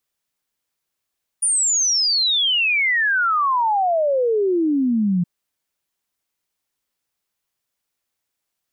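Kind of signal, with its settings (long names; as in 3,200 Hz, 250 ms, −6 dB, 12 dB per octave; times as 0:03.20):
exponential sine sweep 9,600 Hz → 170 Hz 3.82 s −15.5 dBFS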